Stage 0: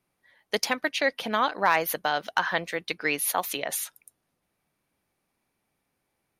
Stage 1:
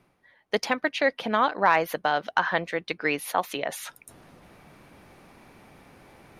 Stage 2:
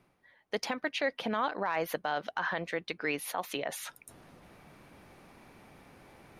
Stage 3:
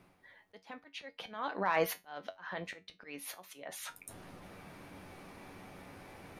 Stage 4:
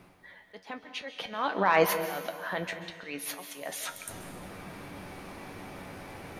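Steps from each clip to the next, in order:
high shelf 3000 Hz -8 dB; reverse; upward compressor, threshold -34 dBFS; reverse; high shelf 9200 Hz -9.5 dB; gain +3 dB
limiter -17 dBFS, peak gain reduction 10.5 dB; gain -3.5 dB
auto swell 0.598 s; resonator 94 Hz, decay 0.2 s, harmonics all, mix 70%; gain +9 dB
plate-style reverb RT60 1.6 s, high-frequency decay 0.95×, pre-delay 0.12 s, DRR 9 dB; gain +7.5 dB

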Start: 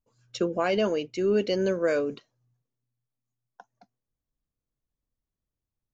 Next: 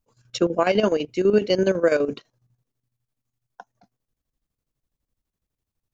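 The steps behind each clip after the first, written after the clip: chopper 12 Hz, depth 65%, duty 60%; gain +7 dB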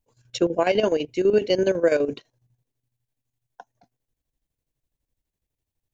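thirty-one-band EQ 200 Hz -7 dB, 1250 Hz -10 dB, 5000 Hz -3 dB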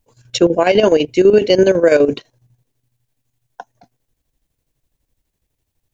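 maximiser +12 dB; gain -1 dB

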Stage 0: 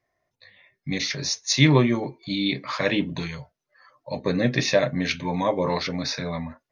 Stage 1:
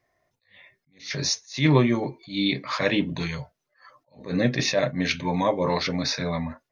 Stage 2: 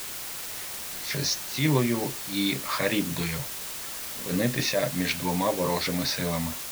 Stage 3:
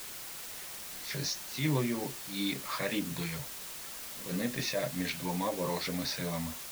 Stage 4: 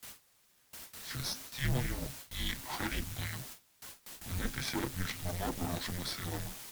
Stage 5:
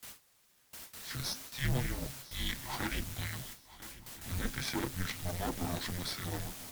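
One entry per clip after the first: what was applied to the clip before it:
in parallel at +0.5 dB: compressor, threshold -30 dBFS, peak gain reduction 17.5 dB; on the sum: attack slew limiter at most 180 dB/s; gain -2 dB
compressor 1.5:1, threshold -27 dBFS, peak gain reduction 5.5 dB; requantised 6-bit, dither triangular
flange 2 Hz, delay 3.6 ms, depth 2.9 ms, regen -54%; ending taper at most 200 dB/s; gain -3 dB
added harmonics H 4 -10 dB, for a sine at -18 dBFS; frequency shift -270 Hz; gate with hold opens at -31 dBFS; gain -4 dB
swung echo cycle 1.329 s, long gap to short 3:1, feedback 31%, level -18 dB

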